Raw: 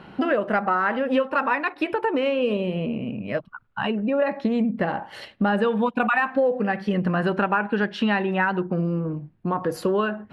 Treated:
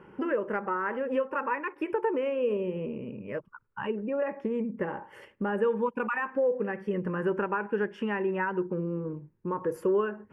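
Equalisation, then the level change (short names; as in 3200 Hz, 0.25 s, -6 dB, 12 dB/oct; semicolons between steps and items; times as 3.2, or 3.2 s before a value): band shelf 590 Hz +12.5 dB; fixed phaser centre 1700 Hz, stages 4; -9.0 dB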